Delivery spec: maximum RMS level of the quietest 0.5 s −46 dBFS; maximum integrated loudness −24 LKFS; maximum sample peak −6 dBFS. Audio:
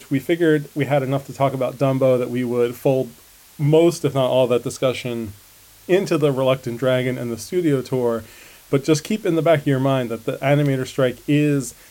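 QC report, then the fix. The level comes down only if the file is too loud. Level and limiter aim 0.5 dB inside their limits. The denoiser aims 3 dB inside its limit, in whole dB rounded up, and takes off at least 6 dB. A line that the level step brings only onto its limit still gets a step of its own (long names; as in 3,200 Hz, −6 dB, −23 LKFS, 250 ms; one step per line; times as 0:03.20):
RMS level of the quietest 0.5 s −48 dBFS: in spec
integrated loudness −20.0 LKFS: out of spec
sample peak −5.5 dBFS: out of spec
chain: level −4.5 dB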